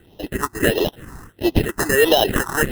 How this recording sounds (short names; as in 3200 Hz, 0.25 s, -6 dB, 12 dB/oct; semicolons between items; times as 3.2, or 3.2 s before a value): aliases and images of a low sample rate 2300 Hz, jitter 0%; phasing stages 4, 1.5 Hz, lowest notch 510–1500 Hz